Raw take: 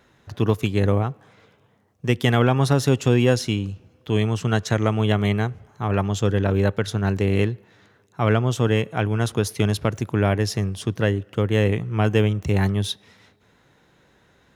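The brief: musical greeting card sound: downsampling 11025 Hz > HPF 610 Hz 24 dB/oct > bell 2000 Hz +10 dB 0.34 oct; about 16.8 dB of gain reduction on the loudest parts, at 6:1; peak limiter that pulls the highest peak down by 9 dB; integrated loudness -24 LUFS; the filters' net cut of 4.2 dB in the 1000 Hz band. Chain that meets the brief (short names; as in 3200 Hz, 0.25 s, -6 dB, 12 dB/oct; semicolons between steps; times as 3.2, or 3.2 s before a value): bell 1000 Hz -6 dB; compressor 6:1, threshold -33 dBFS; limiter -27 dBFS; downsampling 11025 Hz; HPF 610 Hz 24 dB/oct; bell 2000 Hz +10 dB 0.34 oct; gain +23 dB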